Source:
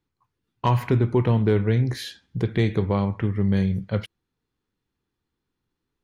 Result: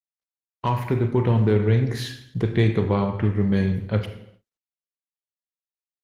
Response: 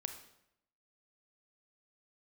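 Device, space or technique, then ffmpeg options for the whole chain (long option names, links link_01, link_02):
speakerphone in a meeting room: -filter_complex "[1:a]atrim=start_sample=2205[link_01];[0:a][link_01]afir=irnorm=-1:irlink=0,asplit=2[link_02][link_03];[link_03]adelay=140,highpass=300,lowpass=3400,asoftclip=type=hard:threshold=-19dB,volume=-22dB[link_04];[link_02][link_04]amix=inputs=2:normalize=0,dynaudnorm=framelen=320:gausssize=9:maxgain=4dB,agate=range=-39dB:threshold=-51dB:ratio=16:detection=peak" -ar 48000 -c:a libopus -b:a 20k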